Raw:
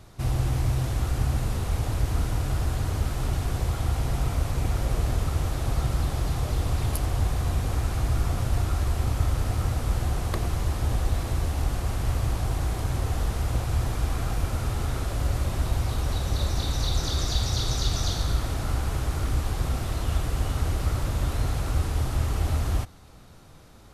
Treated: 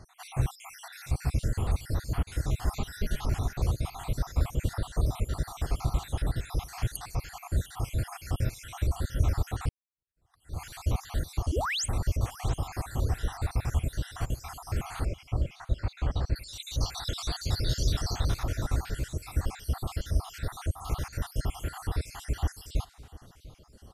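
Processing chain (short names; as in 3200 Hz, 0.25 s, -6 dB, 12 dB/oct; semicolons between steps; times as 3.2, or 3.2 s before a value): random spectral dropouts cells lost 64%; 2.67–3.26 comb 4.8 ms, depth 92%; 11.52–11.86 painted sound rise 270–9400 Hz -30 dBFS; 15.05–16.36 air absorption 160 m; feedback echo 0.696 s, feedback 29%, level -19.5 dB; 9.69–10.62 fade in exponential; MP3 80 kbps 44100 Hz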